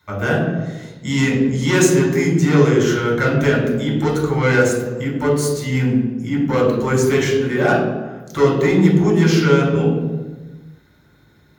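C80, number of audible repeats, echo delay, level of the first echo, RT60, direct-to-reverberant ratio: 6.0 dB, no echo, no echo, no echo, 1.2 s, -3.5 dB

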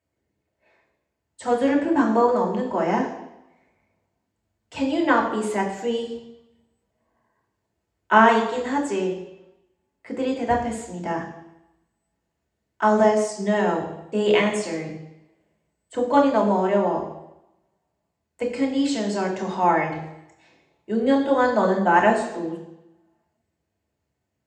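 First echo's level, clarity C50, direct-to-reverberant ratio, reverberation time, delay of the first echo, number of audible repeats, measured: no echo, 6.5 dB, -2.0 dB, 0.90 s, no echo, no echo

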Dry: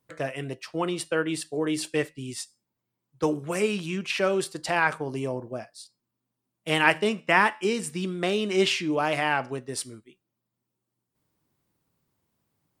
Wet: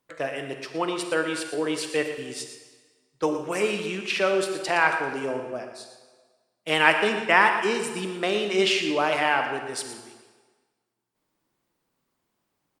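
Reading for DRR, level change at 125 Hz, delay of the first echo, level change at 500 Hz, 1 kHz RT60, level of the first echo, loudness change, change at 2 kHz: 5.5 dB, -5.5 dB, 116 ms, +2.0 dB, 1.5 s, -11.0 dB, +2.0 dB, +3.0 dB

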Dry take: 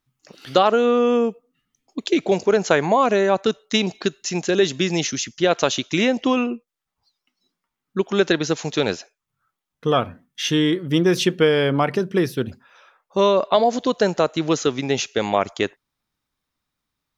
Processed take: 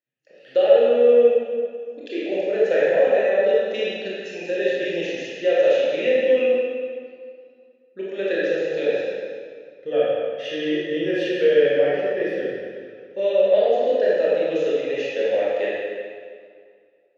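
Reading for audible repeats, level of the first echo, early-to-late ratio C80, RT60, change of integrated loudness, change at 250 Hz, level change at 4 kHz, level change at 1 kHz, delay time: no echo, no echo, -1.5 dB, 2.1 s, -0.5 dB, -8.5 dB, -8.5 dB, -10.5 dB, no echo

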